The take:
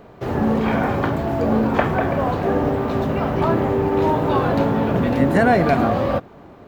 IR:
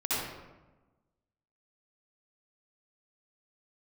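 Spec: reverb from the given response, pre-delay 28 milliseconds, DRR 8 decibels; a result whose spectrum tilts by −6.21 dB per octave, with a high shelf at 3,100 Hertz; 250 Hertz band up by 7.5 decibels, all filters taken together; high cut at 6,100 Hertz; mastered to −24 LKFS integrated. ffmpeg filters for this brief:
-filter_complex "[0:a]lowpass=6100,equalizer=frequency=250:width_type=o:gain=9,highshelf=frequency=3100:gain=-8.5,asplit=2[link_01][link_02];[1:a]atrim=start_sample=2205,adelay=28[link_03];[link_02][link_03]afir=irnorm=-1:irlink=0,volume=-17dB[link_04];[link_01][link_04]amix=inputs=2:normalize=0,volume=-10dB"

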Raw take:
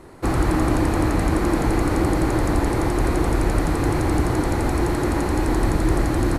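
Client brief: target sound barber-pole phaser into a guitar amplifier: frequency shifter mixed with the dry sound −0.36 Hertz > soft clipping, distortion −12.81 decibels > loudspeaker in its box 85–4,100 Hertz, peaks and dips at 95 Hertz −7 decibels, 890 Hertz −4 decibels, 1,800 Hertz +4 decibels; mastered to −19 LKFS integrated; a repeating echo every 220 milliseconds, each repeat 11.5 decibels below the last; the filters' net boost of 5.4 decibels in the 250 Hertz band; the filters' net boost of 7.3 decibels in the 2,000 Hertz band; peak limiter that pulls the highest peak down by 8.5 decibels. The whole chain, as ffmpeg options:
ffmpeg -i in.wav -filter_complex "[0:a]equalizer=frequency=250:width_type=o:gain=7.5,equalizer=frequency=2000:width_type=o:gain=6,alimiter=limit=-11.5dB:level=0:latency=1,aecho=1:1:220|440|660:0.266|0.0718|0.0194,asplit=2[link_01][link_02];[link_02]afreqshift=-0.36[link_03];[link_01][link_03]amix=inputs=2:normalize=1,asoftclip=threshold=-20dB,highpass=85,equalizer=frequency=95:width_type=q:width=4:gain=-7,equalizer=frequency=890:width_type=q:width=4:gain=-4,equalizer=frequency=1800:width_type=q:width=4:gain=4,lowpass=frequency=4100:width=0.5412,lowpass=frequency=4100:width=1.3066,volume=8dB" out.wav

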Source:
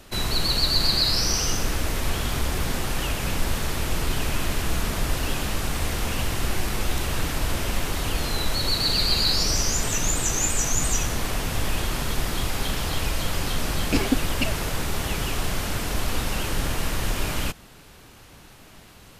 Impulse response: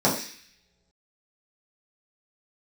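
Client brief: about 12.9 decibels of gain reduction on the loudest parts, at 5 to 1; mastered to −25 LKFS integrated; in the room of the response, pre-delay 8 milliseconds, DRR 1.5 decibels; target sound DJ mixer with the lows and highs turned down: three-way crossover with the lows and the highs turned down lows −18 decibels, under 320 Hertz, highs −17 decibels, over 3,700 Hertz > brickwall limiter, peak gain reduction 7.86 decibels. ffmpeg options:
-filter_complex "[0:a]acompressor=threshold=-32dB:ratio=5,asplit=2[link_01][link_02];[1:a]atrim=start_sample=2205,adelay=8[link_03];[link_02][link_03]afir=irnorm=-1:irlink=0,volume=-18.5dB[link_04];[link_01][link_04]amix=inputs=2:normalize=0,acrossover=split=320 3700:gain=0.126 1 0.141[link_05][link_06][link_07];[link_05][link_06][link_07]amix=inputs=3:normalize=0,volume=16.5dB,alimiter=limit=-16dB:level=0:latency=1"

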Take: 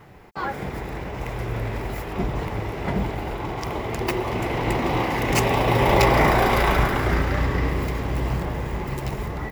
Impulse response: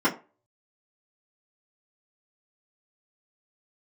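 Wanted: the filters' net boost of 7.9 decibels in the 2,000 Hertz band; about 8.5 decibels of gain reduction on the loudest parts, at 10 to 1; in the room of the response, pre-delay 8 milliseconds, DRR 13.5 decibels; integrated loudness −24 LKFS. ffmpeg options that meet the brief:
-filter_complex "[0:a]equalizer=frequency=2000:width_type=o:gain=9,acompressor=threshold=-19dB:ratio=10,asplit=2[link_01][link_02];[1:a]atrim=start_sample=2205,adelay=8[link_03];[link_02][link_03]afir=irnorm=-1:irlink=0,volume=-28.5dB[link_04];[link_01][link_04]amix=inputs=2:normalize=0,volume=1dB"

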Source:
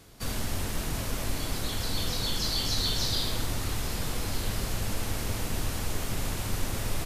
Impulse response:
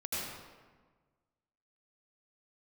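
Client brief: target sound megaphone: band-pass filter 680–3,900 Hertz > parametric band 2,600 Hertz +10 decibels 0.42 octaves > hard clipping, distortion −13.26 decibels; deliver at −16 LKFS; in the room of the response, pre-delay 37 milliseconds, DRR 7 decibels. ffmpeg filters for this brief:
-filter_complex "[0:a]asplit=2[link_01][link_02];[1:a]atrim=start_sample=2205,adelay=37[link_03];[link_02][link_03]afir=irnorm=-1:irlink=0,volume=-11dB[link_04];[link_01][link_04]amix=inputs=2:normalize=0,highpass=680,lowpass=3900,equalizer=frequency=2600:width_type=o:width=0.42:gain=10,asoftclip=type=hard:threshold=-31.5dB,volume=18.5dB"

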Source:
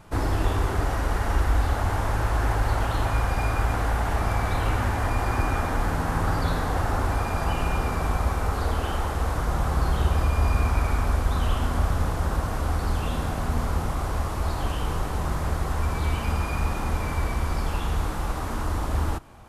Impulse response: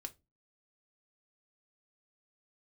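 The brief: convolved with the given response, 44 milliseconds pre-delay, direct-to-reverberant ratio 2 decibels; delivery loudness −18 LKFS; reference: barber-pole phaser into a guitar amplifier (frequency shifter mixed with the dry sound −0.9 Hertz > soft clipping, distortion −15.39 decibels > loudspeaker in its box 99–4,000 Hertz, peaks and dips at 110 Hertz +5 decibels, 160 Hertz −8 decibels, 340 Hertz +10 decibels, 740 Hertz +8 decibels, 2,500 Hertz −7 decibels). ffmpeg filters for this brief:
-filter_complex "[0:a]asplit=2[link_01][link_02];[1:a]atrim=start_sample=2205,adelay=44[link_03];[link_02][link_03]afir=irnorm=-1:irlink=0,volume=2dB[link_04];[link_01][link_04]amix=inputs=2:normalize=0,asplit=2[link_05][link_06];[link_06]afreqshift=-0.9[link_07];[link_05][link_07]amix=inputs=2:normalize=1,asoftclip=threshold=-19.5dB,highpass=99,equalizer=frequency=110:width_type=q:width=4:gain=5,equalizer=frequency=160:width_type=q:width=4:gain=-8,equalizer=frequency=340:width_type=q:width=4:gain=10,equalizer=frequency=740:width_type=q:width=4:gain=8,equalizer=frequency=2500:width_type=q:width=4:gain=-7,lowpass=frequency=4000:width=0.5412,lowpass=frequency=4000:width=1.3066,volume=11.5dB"

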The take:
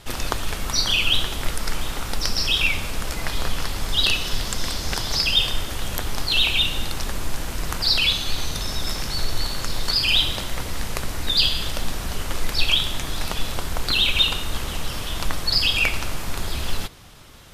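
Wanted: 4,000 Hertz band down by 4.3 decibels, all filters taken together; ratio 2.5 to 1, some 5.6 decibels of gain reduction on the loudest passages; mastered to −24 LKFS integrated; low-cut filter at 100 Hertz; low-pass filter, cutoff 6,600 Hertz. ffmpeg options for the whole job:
ffmpeg -i in.wav -af "highpass=100,lowpass=6600,equalizer=frequency=4000:width_type=o:gain=-5,acompressor=threshold=-27dB:ratio=2.5,volume=6dB" out.wav

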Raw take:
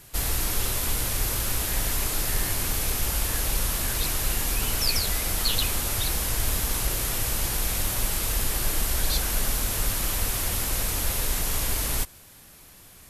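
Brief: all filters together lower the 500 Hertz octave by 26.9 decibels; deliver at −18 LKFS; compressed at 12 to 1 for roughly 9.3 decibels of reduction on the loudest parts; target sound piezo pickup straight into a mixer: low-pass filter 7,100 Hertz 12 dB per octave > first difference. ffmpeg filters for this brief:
ffmpeg -i in.wav -af "equalizer=frequency=500:width_type=o:gain=-5.5,acompressor=threshold=-29dB:ratio=12,lowpass=7100,aderivative,volume=22.5dB" out.wav

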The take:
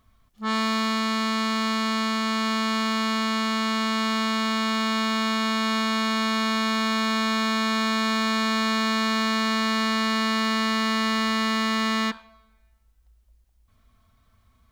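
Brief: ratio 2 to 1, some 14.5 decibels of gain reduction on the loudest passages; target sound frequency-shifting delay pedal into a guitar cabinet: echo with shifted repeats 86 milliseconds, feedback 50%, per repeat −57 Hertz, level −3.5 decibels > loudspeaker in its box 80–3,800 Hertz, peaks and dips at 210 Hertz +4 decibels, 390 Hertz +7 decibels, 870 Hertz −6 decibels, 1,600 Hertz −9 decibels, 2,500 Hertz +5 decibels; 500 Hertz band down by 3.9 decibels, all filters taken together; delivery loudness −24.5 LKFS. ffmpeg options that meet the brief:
ffmpeg -i in.wav -filter_complex "[0:a]equalizer=frequency=500:width_type=o:gain=-7,acompressor=threshold=-49dB:ratio=2,asplit=8[link_01][link_02][link_03][link_04][link_05][link_06][link_07][link_08];[link_02]adelay=86,afreqshift=-57,volume=-3.5dB[link_09];[link_03]adelay=172,afreqshift=-114,volume=-9.5dB[link_10];[link_04]adelay=258,afreqshift=-171,volume=-15.5dB[link_11];[link_05]adelay=344,afreqshift=-228,volume=-21.6dB[link_12];[link_06]adelay=430,afreqshift=-285,volume=-27.6dB[link_13];[link_07]adelay=516,afreqshift=-342,volume=-33.6dB[link_14];[link_08]adelay=602,afreqshift=-399,volume=-39.6dB[link_15];[link_01][link_09][link_10][link_11][link_12][link_13][link_14][link_15]amix=inputs=8:normalize=0,highpass=80,equalizer=frequency=210:width_type=q:width=4:gain=4,equalizer=frequency=390:width_type=q:width=4:gain=7,equalizer=frequency=870:width_type=q:width=4:gain=-6,equalizer=frequency=1600:width_type=q:width=4:gain=-9,equalizer=frequency=2500:width_type=q:width=4:gain=5,lowpass=frequency=3800:width=0.5412,lowpass=frequency=3800:width=1.3066,volume=12.5dB" out.wav

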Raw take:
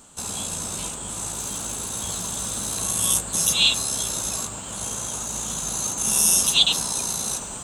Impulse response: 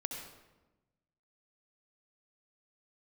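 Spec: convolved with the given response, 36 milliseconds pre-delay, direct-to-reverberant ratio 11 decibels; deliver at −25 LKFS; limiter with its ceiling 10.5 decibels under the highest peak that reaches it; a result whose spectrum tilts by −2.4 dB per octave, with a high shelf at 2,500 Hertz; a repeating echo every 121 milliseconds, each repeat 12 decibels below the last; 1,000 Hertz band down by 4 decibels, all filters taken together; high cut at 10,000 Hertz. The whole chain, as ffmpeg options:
-filter_complex "[0:a]lowpass=10000,equalizer=frequency=1000:width_type=o:gain=-3.5,highshelf=frequency=2500:gain=-8.5,alimiter=limit=-21dB:level=0:latency=1,aecho=1:1:121|242|363:0.251|0.0628|0.0157,asplit=2[link_01][link_02];[1:a]atrim=start_sample=2205,adelay=36[link_03];[link_02][link_03]afir=irnorm=-1:irlink=0,volume=-11.5dB[link_04];[link_01][link_04]amix=inputs=2:normalize=0,volume=6.5dB"

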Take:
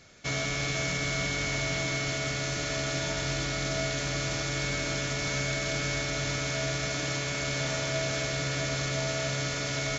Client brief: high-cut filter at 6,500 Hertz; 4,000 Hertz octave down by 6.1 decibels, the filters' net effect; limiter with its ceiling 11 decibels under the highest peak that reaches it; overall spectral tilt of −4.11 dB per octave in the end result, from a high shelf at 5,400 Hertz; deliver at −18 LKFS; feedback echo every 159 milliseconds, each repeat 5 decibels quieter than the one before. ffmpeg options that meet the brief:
ffmpeg -i in.wav -af "lowpass=6500,equalizer=frequency=4000:width_type=o:gain=-4.5,highshelf=frequency=5400:gain=-6,alimiter=level_in=6dB:limit=-24dB:level=0:latency=1,volume=-6dB,aecho=1:1:159|318|477|636|795|954|1113:0.562|0.315|0.176|0.0988|0.0553|0.031|0.0173,volume=19.5dB" out.wav

